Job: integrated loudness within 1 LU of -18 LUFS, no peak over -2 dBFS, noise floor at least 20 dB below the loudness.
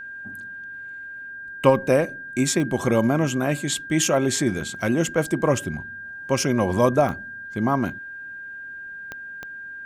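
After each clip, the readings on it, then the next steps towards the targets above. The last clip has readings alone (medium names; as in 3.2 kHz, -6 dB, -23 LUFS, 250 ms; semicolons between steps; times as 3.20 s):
clicks found 4; steady tone 1.6 kHz; tone level -34 dBFS; loudness -22.5 LUFS; peak level -3.5 dBFS; loudness target -18.0 LUFS
-> de-click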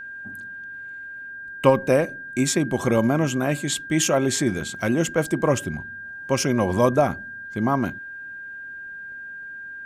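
clicks found 0; steady tone 1.6 kHz; tone level -34 dBFS
-> band-stop 1.6 kHz, Q 30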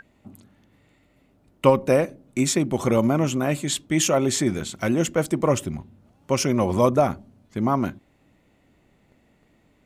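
steady tone not found; loudness -22.5 LUFS; peak level -3.5 dBFS; loudness target -18.0 LUFS
-> trim +4.5 dB; peak limiter -2 dBFS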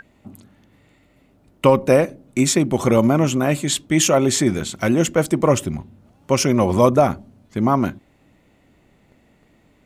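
loudness -18.0 LUFS; peak level -2.0 dBFS; noise floor -58 dBFS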